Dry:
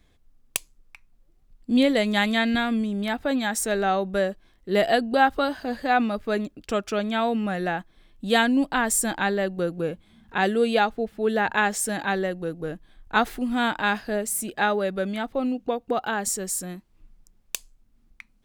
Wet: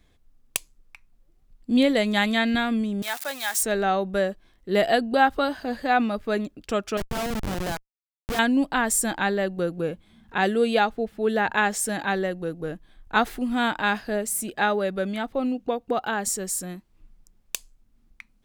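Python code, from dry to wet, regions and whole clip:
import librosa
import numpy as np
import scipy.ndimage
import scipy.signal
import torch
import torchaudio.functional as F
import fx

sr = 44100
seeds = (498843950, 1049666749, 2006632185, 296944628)

y = fx.chain(x, sr, fx.crossing_spikes(level_db=-24.0),
    fx.highpass(hz=810.0, slope=12), at=(3.02, 3.63))
y = fx.chain(y, sr, fx.highpass(hz=250.0, slope=6),
    fx.schmitt(flips_db=-24.5), at=(6.97, 8.39))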